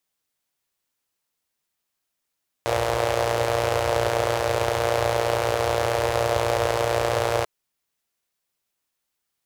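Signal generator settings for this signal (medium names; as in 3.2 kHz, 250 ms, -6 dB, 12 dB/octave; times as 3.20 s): four-cylinder engine model, steady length 4.79 s, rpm 3500, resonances 87/530 Hz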